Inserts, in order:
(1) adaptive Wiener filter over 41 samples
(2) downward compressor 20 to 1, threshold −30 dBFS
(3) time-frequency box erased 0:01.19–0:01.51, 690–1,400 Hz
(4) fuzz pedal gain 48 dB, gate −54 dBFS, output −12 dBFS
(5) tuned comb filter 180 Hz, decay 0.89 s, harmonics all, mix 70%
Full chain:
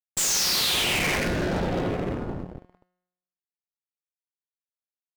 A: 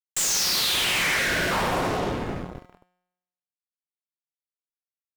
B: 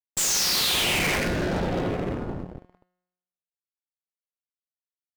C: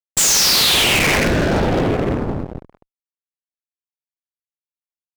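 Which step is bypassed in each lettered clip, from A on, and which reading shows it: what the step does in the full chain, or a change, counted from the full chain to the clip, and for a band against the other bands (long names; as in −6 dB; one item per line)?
1, 1 kHz band +4.5 dB
2, average gain reduction 2.5 dB
5, change in crest factor −2.0 dB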